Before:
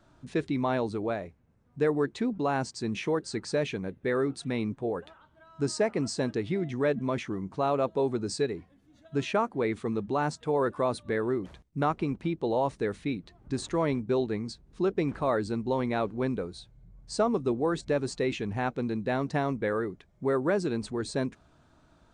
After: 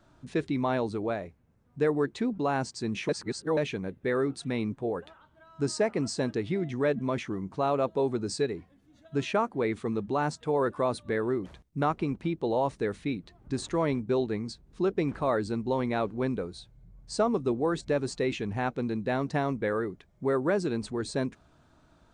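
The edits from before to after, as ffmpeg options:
ffmpeg -i in.wav -filter_complex "[0:a]asplit=3[link_01][link_02][link_03];[link_01]atrim=end=3.092[link_04];[link_02]atrim=start=3.088:end=3.572,asetpts=PTS-STARTPTS,areverse[link_05];[link_03]atrim=start=3.568[link_06];[link_04][link_05]acrossfade=duration=0.004:curve1=hsin:curve2=hsin[link_07];[link_07][link_06]acrossfade=duration=0.004:curve1=hsin:curve2=hsin" out.wav

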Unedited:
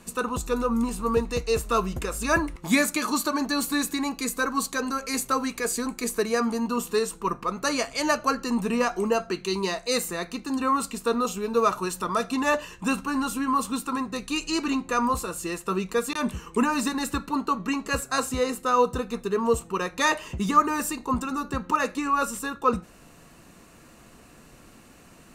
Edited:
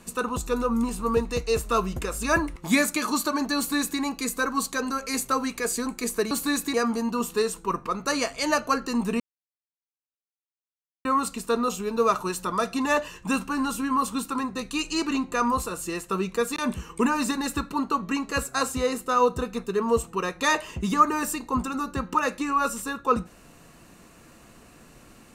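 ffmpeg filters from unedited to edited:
ffmpeg -i in.wav -filter_complex "[0:a]asplit=5[link_01][link_02][link_03][link_04][link_05];[link_01]atrim=end=6.312[link_06];[link_02]atrim=start=3.568:end=4.002[link_07];[link_03]atrim=start=6.308:end=8.77,asetpts=PTS-STARTPTS,afade=type=out:start_time=2.458:duration=0.004:curve=hsin[link_08];[link_04]atrim=start=8.77:end=10.62,asetpts=PTS-STARTPTS,volume=0[link_09];[link_05]atrim=start=10.62,asetpts=PTS-STARTPTS,afade=type=in:duration=0.004:curve=hsin[link_10];[link_06][link_07]acrossfade=duration=0.004:curve1=hsin:curve2=hsin[link_11];[link_08][link_09][link_10]concat=n=3:v=0:a=1[link_12];[link_11][link_12]acrossfade=duration=0.004:curve1=hsin:curve2=hsin" out.wav

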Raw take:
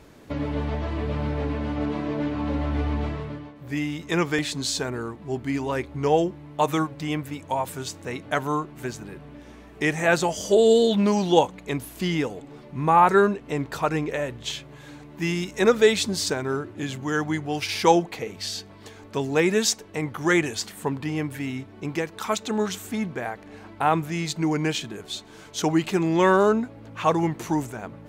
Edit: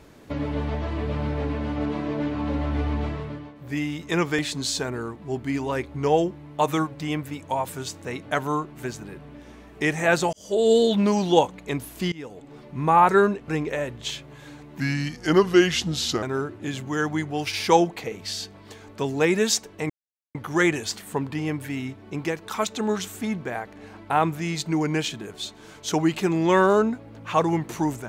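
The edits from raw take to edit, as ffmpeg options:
ffmpeg -i in.wav -filter_complex "[0:a]asplit=7[link_01][link_02][link_03][link_04][link_05][link_06][link_07];[link_01]atrim=end=10.33,asetpts=PTS-STARTPTS,afade=type=out:start_time=10.326:duration=0.004:curve=hsin[link_08];[link_02]atrim=start=10.33:end=12.12,asetpts=PTS-STARTPTS,afade=type=in:duration=0.42,afade=type=out:start_time=1.786:duration=0.004:curve=hsin:silence=0.0707946[link_09];[link_03]atrim=start=12.12:end=13.482,asetpts=PTS-STARTPTS,afade=type=in:duration=0.48:silence=0.0707946[link_10];[link_04]atrim=start=13.888:end=15.214[link_11];[link_05]atrim=start=15.21:end=16.38,asetpts=PTS-STARTPTS,asetrate=36162,aresample=44100,atrim=end_sample=62923,asetpts=PTS-STARTPTS[link_12];[link_06]atrim=start=16.376:end=20.05,asetpts=PTS-STARTPTS,afade=type=out:start_time=3.67:duration=0.004:curve=hsin,apad=pad_dur=0.45[link_13];[link_07]atrim=start=20.05,asetpts=PTS-STARTPTS,afade=type=in:duration=0.004:curve=hsin[link_14];[link_08][link_09][link_10]concat=n=3:v=0:a=1[link_15];[link_15][link_11]acrossfade=duration=0.004:curve1=hsin:curve2=hsin[link_16];[link_16][link_12]acrossfade=duration=0.004:curve1=hsin:curve2=hsin[link_17];[link_13][link_14]concat=n=2:v=0:a=1[link_18];[link_17][link_18]acrossfade=duration=0.004:curve1=hsin:curve2=hsin" out.wav

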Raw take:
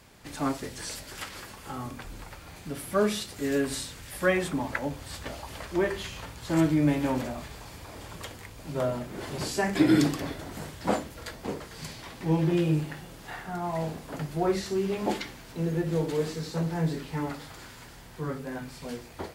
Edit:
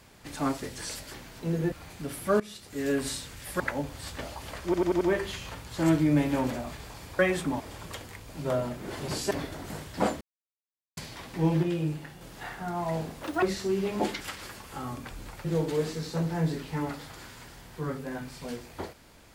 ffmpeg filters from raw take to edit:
ffmpeg -i in.wav -filter_complex "[0:a]asplit=20[link_01][link_02][link_03][link_04][link_05][link_06][link_07][link_08][link_09][link_10][link_11][link_12][link_13][link_14][link_15][link_16][link_17][link_18][link_19][link_20];[link_01]atrim=end=1.142[link_21];[link_02]atrim=start=15.268:end=15.852[link_22];[link_03]atrim=start=2.378:end=3.06,asetpts=PTS-STARTPTS,afade=type=out:start_time=0.678:duration=0.004:curve=hsin:silence=0.105925[link_23];[link_04]atrim=start=3.06:end=4.262,asetpts=PTS-STARTPTS,afade=type=in:duration=0.6:silence=0.105925[link_24];[link_05]atrim=start=4.668:end=5.812[link_25];[link_06]atrim=start=5.718:end=5.812[link_26];[link_07]atrim=start=5.718:end=5.812[link_27];[link_08]atrim=start=5.718:end=5.812[link_28];[link_09]atrim=start=5.718:end=7.902[link_29];[link_10]atrim=start=4.258:end=4.672[link_30];[link_11]atrim=start=7.898:end=9.612[link_31];[link_12]atrim=start=10.178:end=11.08,asetpts=PTS-STARTPTS,afade=type=out:start_time=0.898:duration=0.004:curve=hsin[link_32];[link_13]atrim=start=11.08:end=11.84,asetpts=PTS-STARTPTS,volume=0[link_33];[link_14]atrim=start=11.84:end=12.502,asetpts=PTS-STARTPTS,afade=type=in:duration=0.004:curve=hsin[link_34];[link_15]atrim=start=12.498:end=13.082,asetpts=PTS-STARTPTS,volume=-4.5dB[link_35];[link_16]atrim=start=13.078:end=14.104[link_36];[link_17]atrim=start=14.1:end=14.49,asetpts=PTS-STARTPTS,asetrate=87759,aresample=44100[link_37];[link_18]atrim=start=14.486:end=15.272[link_38];[link_19]atrim=start=1.138:end=2.382[link_39];[link_20]atrim=start=15.848[link_40];[link_21][link_22]acrossfade=duration=0.004:curve1=hsin:curve2=hsin[link_41];[link_23][link_24]concat=n=2:v=0:a=1[link_42];[link_41][link_42]acrossfade=duration=0.004:curve1=hsin:curve2=hsin[link_43];[link_43][link_25]acrossfade=duration=0.004:curve1=hsin:curve2=hsin[link_44];[link_44][link_26]acrossfade=duration=0.004:curve1=hsin:curve2=hsin[link_45];[link_45][link_27]acrossfade=duration=0.004:curve1=hsin:curve2=hsin[link_46];[link_46][link_28]acrossfade=duration=0.004:curve1=hsin:curve2=hsin[link_47];[link_47][link_29]acrossfade=duration=0.004:curve1=hsin:curve2=hsin[link_48];[link_48][link_30]acrossfade=duration=0.004:curve1=hsin:curve2=hsin[link_49];[link_49][link_31]acrossfade=duration=0.004:curve1=hsin:curve2=hsin[link_50];[link_32][link_33][link_34]concat=n=3:v=0:a=1[link_51];[link_50][link_51]acrossfade=duration=0.004:curve1=hsin:curve2=hsin[link_52];[link_52][link_35]acrossfade=duration=0.004:curve1=hsin:curve2=hsin[link_53];[link_53][link_36]acrossfade=duration=0.004:curve1=hsin:curve2=hsin[link_54];[link_54][link_37]acrossfade=duration=0.004:curve1=hsin:curve2=hsin[link_55];[link_55][link_38]acrossfade=duration=0.004:curve1=hsin:curve2=hsin[link_56];[link_56][link_39]acrossfade=duration=0.004:curve1=hsin:curve2=hsin[link_57];[link_57][link_40]acrossfade=duration=0.004:curve1=hsin:curve2=hsin" out.wav

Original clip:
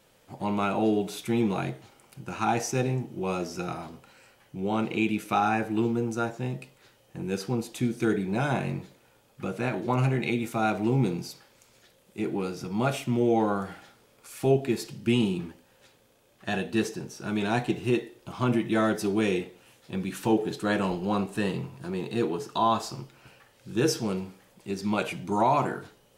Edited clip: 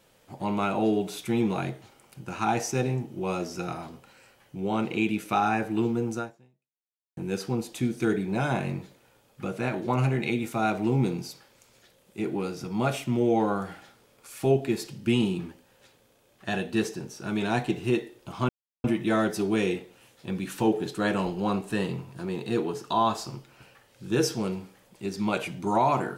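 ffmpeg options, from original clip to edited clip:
ffmpeg -i in.wav -filter_complex "[0:a]asplit=3[link_01][link_02][link_03];[link_01]atrim=end=7.17,asetpts=PTS-STARTPTS,afade=type=out:start_time=6.17:duration=1:curve=exp[link_04];[link_02]atrim=start=7.17:end=18.49,asetpts=PTS-STARTPTS,afade=type=in:duration=0.004:curve=hsin,afade=type=out:start_time=11.316:duration=0.004:curve=hsin,apad=pad_dur=0.35[link_05];[link_03]atrim=start=18.49,asetpts=PTS-STARTPTS,afade=type=in:duration=0.004:curve=hsin[link_06];[link_04][link_05][link_06]concat=n=3:v=0:a=1" out.wav

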